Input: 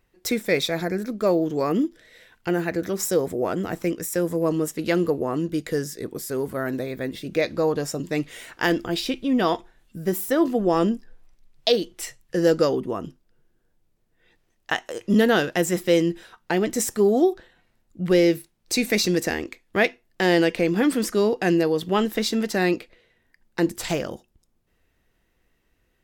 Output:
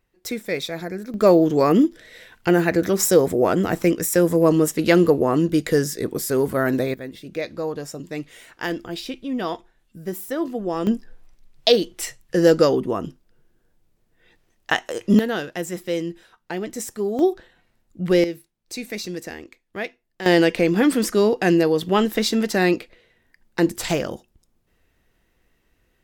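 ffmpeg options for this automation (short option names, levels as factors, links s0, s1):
-af "asetnsamples=n=441:p=0,asendcmd='1.14 volume volume 6.5dB;6.94 volume volume -5dB;10.87 volume volume 4dB;15.19 volume volume -6dB;17.19 volume volume 1dB;18.24 volume volume -9dB;20.26 volume volume 3dB',volume=0.631"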